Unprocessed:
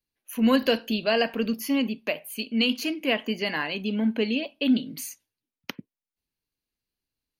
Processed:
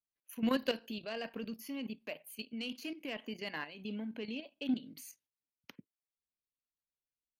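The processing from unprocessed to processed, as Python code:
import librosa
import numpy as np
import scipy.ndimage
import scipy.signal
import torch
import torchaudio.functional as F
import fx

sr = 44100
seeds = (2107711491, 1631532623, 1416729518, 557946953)

y = fx.cheby_harmonics(x, sr, harmonics=(3,), levels_db=(-19,), full_scale_db=-9.5)
y = fx.level_steps(y, sr, step_db=11)
y = y * librosa.db_to_amplitude(-6.5)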